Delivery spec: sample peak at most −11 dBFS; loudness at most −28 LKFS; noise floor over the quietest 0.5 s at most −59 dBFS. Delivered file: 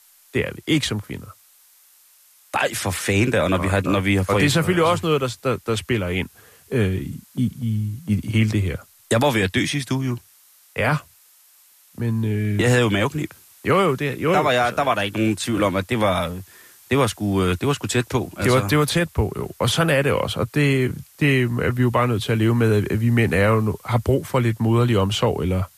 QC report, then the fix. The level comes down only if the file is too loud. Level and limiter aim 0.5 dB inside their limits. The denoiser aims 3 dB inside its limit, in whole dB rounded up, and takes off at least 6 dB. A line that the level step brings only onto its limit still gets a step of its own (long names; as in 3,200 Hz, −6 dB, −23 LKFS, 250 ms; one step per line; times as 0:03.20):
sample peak −7.0 dBFS: out of spec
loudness −21.0 LKFS: out of spec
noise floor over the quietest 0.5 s −54 dBFS: out of spec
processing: level −7.5 dB